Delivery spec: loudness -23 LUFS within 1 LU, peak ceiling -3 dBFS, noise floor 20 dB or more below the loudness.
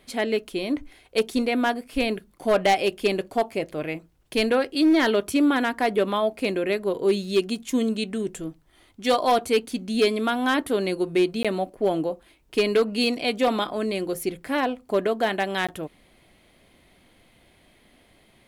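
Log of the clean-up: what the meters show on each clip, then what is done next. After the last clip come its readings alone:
clipped 0.5%; flat tops at -13.5 dBFS; dropouts 2; longest dropout 16 ms; loudness -24.5 LUFS; peak -13.5 dBFS; loudness target -23.0 LUFS
-> clip repair -13.5 dBFS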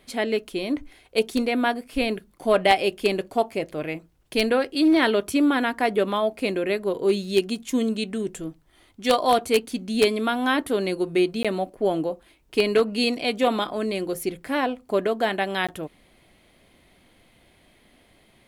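clipped 0.0%; dropouts 2; longest dropout 16 ms
-> interpolate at 11.43/15.67, 16 ms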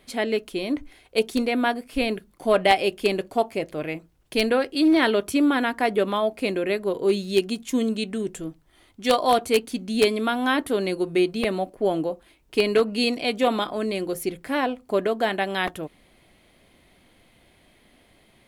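dropouts 0; loudness -24.0 LUFS; peak -4.5 dBFS; loudness target -23.0 LUFS
-> gain +1 dB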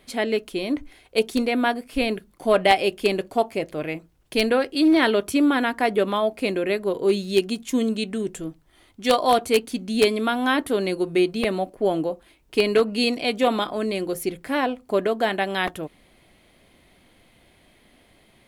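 loudness -23.0 LUFS; peak -3.5 dBFS; noise floor -58 dBFS

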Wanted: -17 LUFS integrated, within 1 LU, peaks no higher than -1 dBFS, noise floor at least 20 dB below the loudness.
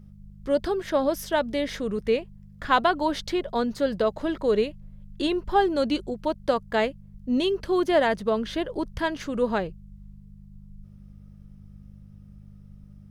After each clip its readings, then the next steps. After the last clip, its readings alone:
hum 50 Hz; harmonics up to 200 Hz; hum level -46 dBFS; loudness -26.0 LUFS; peak -8.0 dBFS; loudness target -17.0 LUFS
-> de-hum 50 Hz, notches 4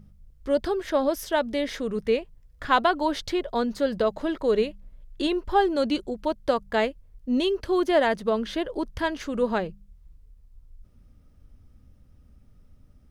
hum none; loudness -26.0 LUFS; peak -8.0 dBFS; loudness target -17.0 LUFS
-> gain +9 dB; limiter -1 dBFS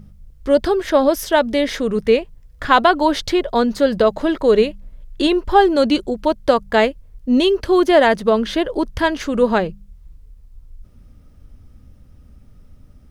loudness -17.0 LUFS; peak -1.0 dBFS; noise floor -47 dBFS

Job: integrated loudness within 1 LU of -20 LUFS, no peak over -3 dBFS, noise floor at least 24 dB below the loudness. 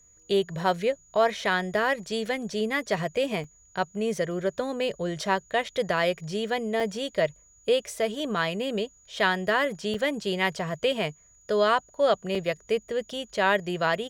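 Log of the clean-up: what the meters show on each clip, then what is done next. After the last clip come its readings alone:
dropouts 4; longest dropout 4.2 ms; steady tone 6800 Hz; tone level -56 dBFS; loudness -27.5 LUFS; peak -8.0 dBFS; loudness target -20.0 LUFS
-> interpolate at 3.44/6.8/9.94/12.35, 4.2 ms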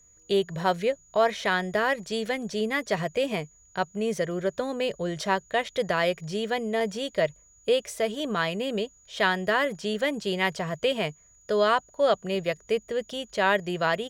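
dropouts 0; steady tone 6800 Hz; tone level -56 dBFS
-> notch 6800 Hz, Q 30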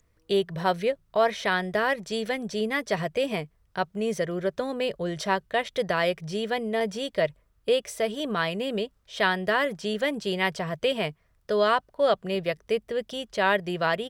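steady tone none; loudness -27.5 LUFS; peak -8.0 dBFS; loudness target -20.0 LUFS
-> gain +7.5 dB; limiter -3 dBFS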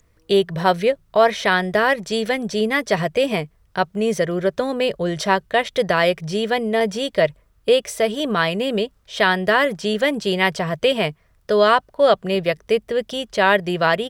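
loudness -20.0 LUFS; peak -3.0 dBFS; noise floor -59 dBFS

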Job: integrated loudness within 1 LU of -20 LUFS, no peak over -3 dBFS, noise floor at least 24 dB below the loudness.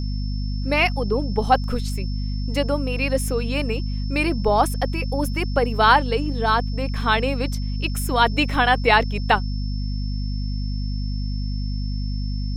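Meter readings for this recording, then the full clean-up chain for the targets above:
hum 50 Hz; harmonics up to 250 Hz; hum level -23 dBFS; steady tone 5300 Hz; tone level -40 dBFS; loudness -22.5 LUFS; peak -2.0 dBFS; loudness target -20.0 LUFS
-> notches 50/100/150/200/250 Hz; notch 5300 Hz, Q 30; gain +2.5 dB; limiter -3 dBFS

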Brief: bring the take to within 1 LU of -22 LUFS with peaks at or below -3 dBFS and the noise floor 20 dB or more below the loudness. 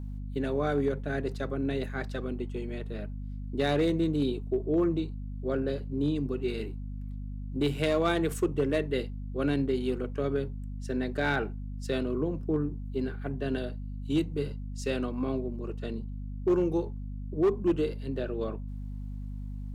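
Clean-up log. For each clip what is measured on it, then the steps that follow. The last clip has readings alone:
clipped 0.4%; flat tops at -19.0 dBFS; hum 50 Hz; harmonics up to 250 Hz; hum level -35 dBFS; loudness -31.5 LUFS; peak -19.0 dBFS; loudness target -22.0 LUFS
-> clip repair -19 dBFS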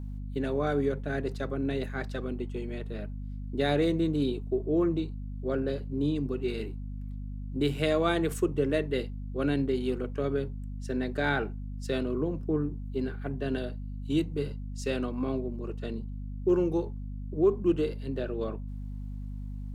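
clipped 0.0%; hum 50 Hz; harmonics up to 250 Hz; hum level -35 dBFS
-> notches 50/100/150/200/250 Hz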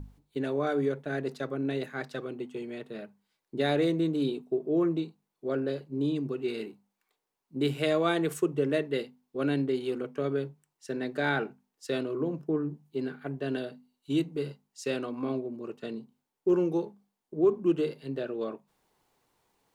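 hum none; loudness -31.0 LUFS; peak -14.0 dBFS; loudness target -22.0 LUFS
-> gain +9 dB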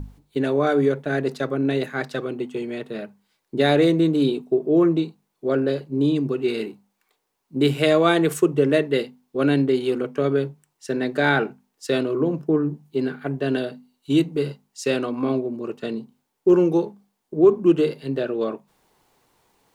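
loudness -22.0 LUFS; peak -5.0 dBFS; noise floor -75 dBFS

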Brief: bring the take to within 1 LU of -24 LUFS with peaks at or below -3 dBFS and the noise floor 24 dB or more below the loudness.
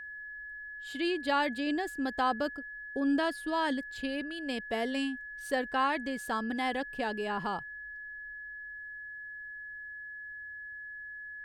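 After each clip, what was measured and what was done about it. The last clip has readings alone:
steady tone 1700 Hz; tone level -41 dBFS; loudness -34.5 LUFS; peak -17.0 dBFS; loudness target -24.0 LUFS
-> notch 1700 Hz, Q 30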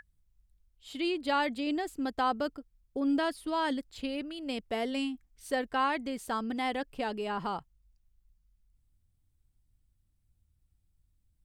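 steady tone none; loudness -33.0 LUFS; peak -17.0 dBFS; loudness target -24.0 LUFS
-> gain +9 dB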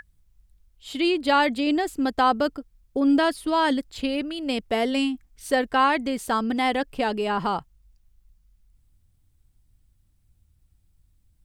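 loudness -24.0 LUFS; peak -8.0 dBFS; noise floor -65 dBFS

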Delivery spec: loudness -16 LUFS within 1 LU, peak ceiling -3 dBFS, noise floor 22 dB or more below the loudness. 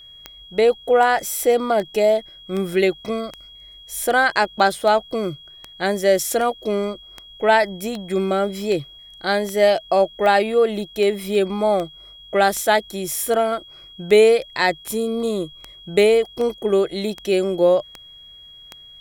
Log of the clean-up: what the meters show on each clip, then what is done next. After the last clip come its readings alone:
clicks 25; steady tone 3300 Hz; tone level -41 dBFS; loudness -19.5 LUFS; peak -3.0 dBFS; loudness target -16.0 LUFS
-> de-click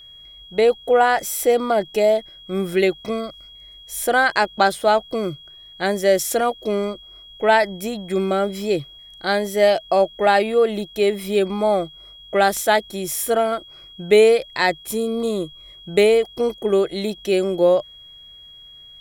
clicks 0; steady tone 3300 Hz; tone level -41 dBFS
-> notch 3300 Hz, Q 30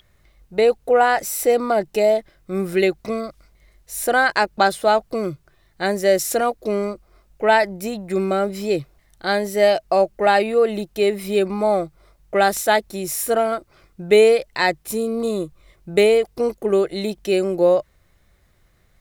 steady tone none; loudness -20.0 LUFS; peak -3.0 dBFS; loudness target -16.0 LUFS
-> gain +4 dB; limiter -3 dBFS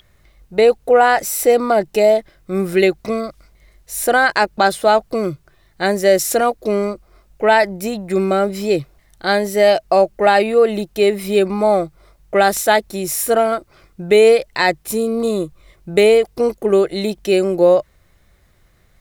loudness -16.0 LUFS; peak -3.0 dBFS; noise floor -55 dBFS

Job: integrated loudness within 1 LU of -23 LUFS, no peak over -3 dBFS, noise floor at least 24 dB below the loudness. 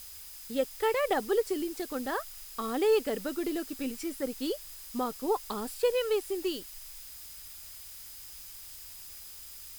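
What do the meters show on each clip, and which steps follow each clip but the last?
steady tone 5000 Hz; tone level -57 dBFS; noise floor -47 dBFS; noise floor target -56 dBFS; loudness -32.0 LUFS; peak -16.0 dBFS; loudness target -23.0 LUFS
-> notch 5000 Hz, Q 30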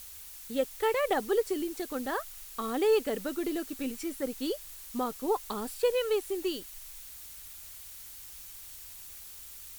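steady tone none; noise floor -47 dBFS; noise floor target -56 dBFS
-> denoiser 9 dB, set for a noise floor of -47 dBFS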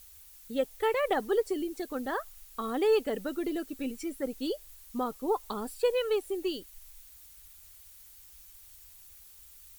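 noise floor -54 dBFS; noise floor target -56 dBFS
-> denoiser 6 dB, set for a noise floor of -54 dBFS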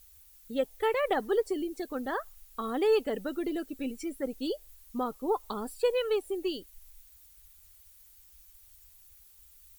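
noise floor -57 dBFS; loudness -32.0 LUFS; peak -16.5 dBFS; loudness target -23.0 LUFS
-> gain +9 dB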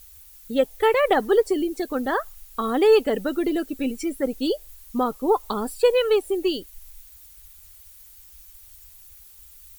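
loudness -23.0 LUFS; peak -7.5 dBFS; noise floor -48 dBFS

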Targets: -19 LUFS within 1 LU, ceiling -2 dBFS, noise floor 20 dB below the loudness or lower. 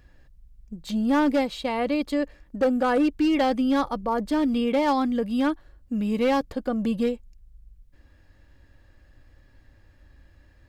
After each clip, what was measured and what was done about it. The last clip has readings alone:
clipped 1.4%; flat tops at -16.5 dBFS; loudness -24.5 LUFS; peak -16.5 dBFS; loudness target -19.0 LUFS
-> clip repair -16.5 dBFS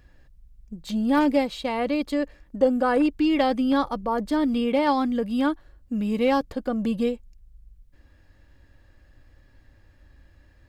clipped 0.0%; loudness -24.0 LUFS; peak -8.5 dBFS; loudness target -19.0 LUFS
-> gain +5 dB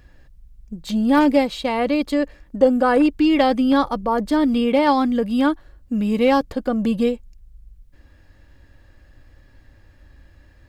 loudness -19.0 LUFS; peak -3.5 dBFS; noise floor -52 dBFS

